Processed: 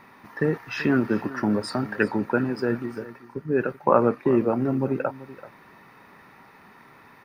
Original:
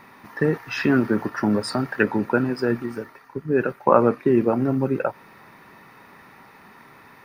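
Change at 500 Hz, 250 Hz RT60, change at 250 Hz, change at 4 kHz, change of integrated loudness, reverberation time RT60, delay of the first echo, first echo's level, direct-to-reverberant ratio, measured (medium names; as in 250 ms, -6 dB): -2.5 dB, no reverb, -2.5 dB, -4.0 dB, -2.5 dB, no reverb, 384 ms, -17.0 dB, no reverb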